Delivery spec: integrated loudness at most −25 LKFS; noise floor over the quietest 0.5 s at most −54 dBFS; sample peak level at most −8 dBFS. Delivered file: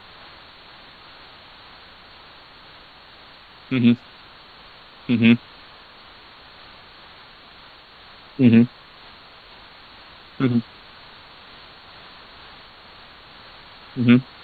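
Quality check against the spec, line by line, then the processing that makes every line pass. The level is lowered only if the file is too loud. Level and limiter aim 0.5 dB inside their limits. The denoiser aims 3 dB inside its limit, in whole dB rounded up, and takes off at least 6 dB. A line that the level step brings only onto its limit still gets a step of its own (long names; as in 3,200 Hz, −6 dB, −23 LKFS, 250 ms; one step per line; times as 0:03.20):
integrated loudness −19.0 LKFS: out of spec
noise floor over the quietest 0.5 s −46 dBFS: out of spec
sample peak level −2.5 dBFS: out of spec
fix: broadband denoise 6 dB, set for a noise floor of −46 dBFS
level −6.5 dB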